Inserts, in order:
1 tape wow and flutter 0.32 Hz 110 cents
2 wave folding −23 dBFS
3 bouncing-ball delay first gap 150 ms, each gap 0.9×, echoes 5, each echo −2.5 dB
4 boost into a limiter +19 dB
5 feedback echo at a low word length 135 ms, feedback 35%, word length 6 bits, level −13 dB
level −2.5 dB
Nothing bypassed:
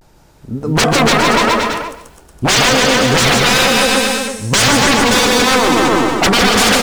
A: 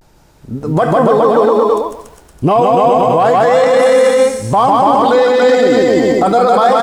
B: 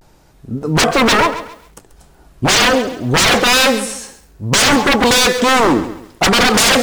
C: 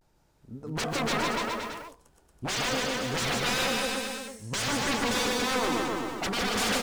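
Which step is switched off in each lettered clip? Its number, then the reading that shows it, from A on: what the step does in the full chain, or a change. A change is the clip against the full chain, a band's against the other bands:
2, change in crest factor −2.0 dB
3, change in momentary loudness spread +6 LU
4, change in crest factor +2.0 dB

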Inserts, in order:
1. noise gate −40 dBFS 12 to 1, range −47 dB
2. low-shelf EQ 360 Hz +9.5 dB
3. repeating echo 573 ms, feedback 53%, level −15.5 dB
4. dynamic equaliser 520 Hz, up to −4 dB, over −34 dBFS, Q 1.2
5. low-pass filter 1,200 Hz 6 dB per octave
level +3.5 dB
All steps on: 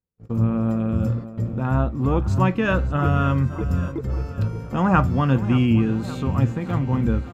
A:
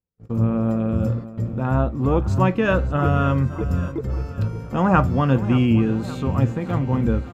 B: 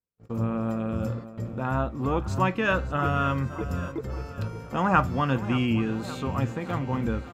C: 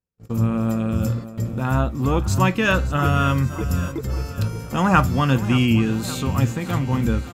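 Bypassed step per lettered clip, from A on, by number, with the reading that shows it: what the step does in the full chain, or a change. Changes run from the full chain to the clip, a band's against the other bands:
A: 4, 500 Hz band +3.0 dB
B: 2, 125 Hz band −7.5 dB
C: 5, 4 kHz band +8.5 dB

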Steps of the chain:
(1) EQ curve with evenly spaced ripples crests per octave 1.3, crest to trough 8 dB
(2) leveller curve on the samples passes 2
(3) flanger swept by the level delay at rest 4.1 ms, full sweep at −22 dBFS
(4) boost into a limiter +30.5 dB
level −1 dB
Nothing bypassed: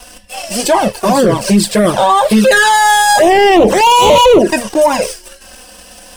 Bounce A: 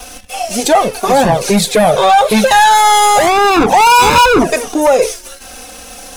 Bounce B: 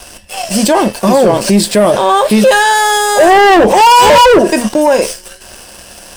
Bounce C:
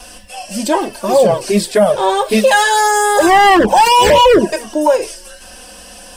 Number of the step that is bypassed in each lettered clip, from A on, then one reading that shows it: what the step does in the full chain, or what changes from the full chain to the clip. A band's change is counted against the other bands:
1, 1 kHz band +3.0 dB
3, change in momentary loudness spread −2 LU
2, 125 Hz band −3.0 dB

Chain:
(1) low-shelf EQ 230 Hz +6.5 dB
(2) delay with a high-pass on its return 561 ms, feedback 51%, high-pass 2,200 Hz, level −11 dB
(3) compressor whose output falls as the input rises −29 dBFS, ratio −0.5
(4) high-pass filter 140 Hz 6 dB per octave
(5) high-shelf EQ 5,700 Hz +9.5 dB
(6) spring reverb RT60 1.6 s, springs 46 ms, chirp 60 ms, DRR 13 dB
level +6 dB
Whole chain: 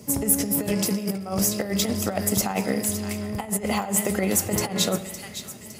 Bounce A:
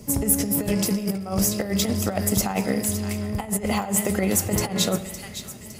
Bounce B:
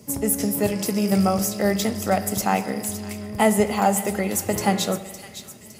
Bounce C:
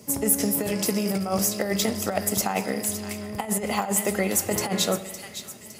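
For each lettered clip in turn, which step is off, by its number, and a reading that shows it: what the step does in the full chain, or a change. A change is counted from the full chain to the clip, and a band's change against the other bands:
4, 125 Hz band +3.0 dB
3, change in momentary loudness spread +3 LU
1, 125 Hz band −3.0 dB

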